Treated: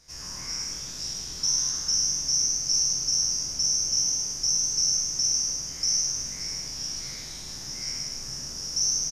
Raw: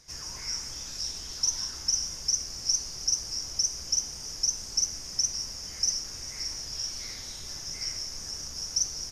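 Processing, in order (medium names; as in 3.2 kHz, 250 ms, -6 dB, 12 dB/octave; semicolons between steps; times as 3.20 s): spectral sustain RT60 1.49 s; frequency-shifting echo 106 ms, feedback 37%, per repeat +120 Hz, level -5 dB; trim -3 dB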